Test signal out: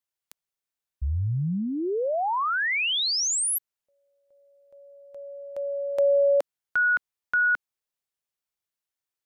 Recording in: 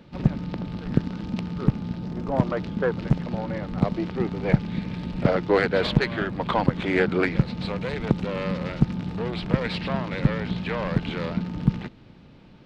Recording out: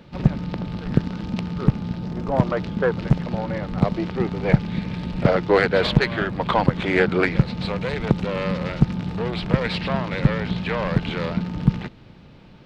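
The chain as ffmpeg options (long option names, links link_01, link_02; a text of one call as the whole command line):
ffmpeg -i in.wav -af "equalizer=frequency=270:width=1.8:gain=-3.5,volume=4dB" out.wav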